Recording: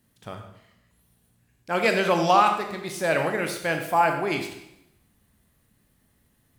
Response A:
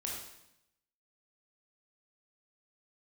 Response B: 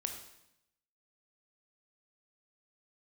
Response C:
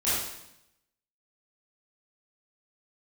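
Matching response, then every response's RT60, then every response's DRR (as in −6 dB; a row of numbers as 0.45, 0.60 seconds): B; 0.80, 0.80, 0.80 seconds; −2.5, 4.0, −12.0 decibels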